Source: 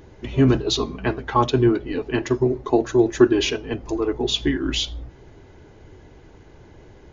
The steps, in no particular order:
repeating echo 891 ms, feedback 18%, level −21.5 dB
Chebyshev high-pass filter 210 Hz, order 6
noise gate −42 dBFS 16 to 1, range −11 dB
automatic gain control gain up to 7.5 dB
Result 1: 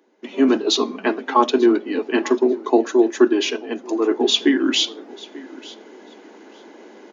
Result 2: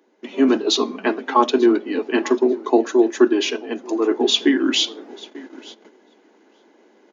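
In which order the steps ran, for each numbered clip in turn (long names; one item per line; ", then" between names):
repeating echo, then automatic gain control, then noise gate, then Chebyshev high-pass filter
repeating echo, then noise gate, then automatic gain control, then Chebyshev high-pass filter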